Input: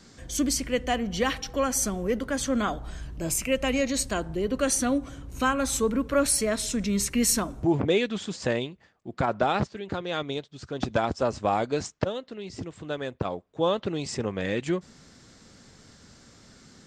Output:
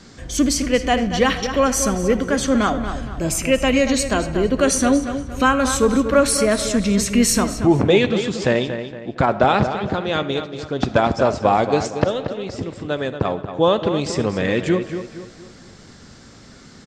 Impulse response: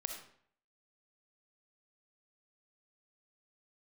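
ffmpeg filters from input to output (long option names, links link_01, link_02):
-filter_complex "[0:a]highshelf=frequency=10000:gain=-12,asplit=2[link_01][link_02];[link_02]adelay=232,lowpass=frequency=4000:poles=1,volume=-9dB,asplit=2[link_03][link_04];[link_04]adelay=232,lowpass=frequency=4000:poles=1,volume=0.41,asplit=2[link_05][link_06];[link_06]adelay=232,lowpass=frequency=4000:poles=1,volume=0.41,asplit=2[link_07][link_08];[link_08]adelay=232,lowpass=frequency=4000:poles=1,volume=0.41,asplit=2[link_09][link_10];[link_10]adelay=232,lowpass=frequency=4000:poles=1,volume=0.41[link_11];[link_01][link_03][link_05][link_07][link_09][link_11]amix=inputs=6:normalize=0,asplit=2[link_12][link_13];[1:a]atrim=start_sample=2205[link_14];[link_13][link_14]afir=irnorm=-1:irlink=0,volume=-6dB[link_15];[link_12][link_15]amix=inputs=2:normalize=0,volume=5.5dB"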